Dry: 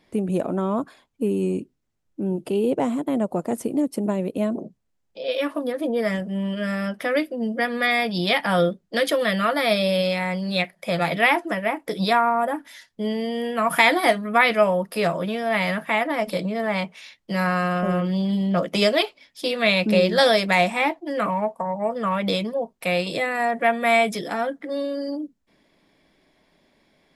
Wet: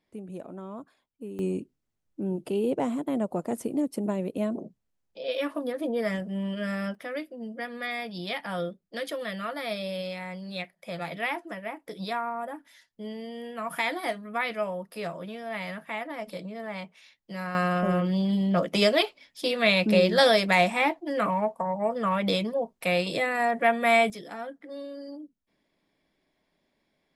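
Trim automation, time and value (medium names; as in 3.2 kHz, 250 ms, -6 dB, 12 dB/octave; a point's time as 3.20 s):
-16 dB
from 1.39 s -5 dB
from 6.95 s -12 dB
from 17.55 s -2.5 dB
from 24.10 s -12 dB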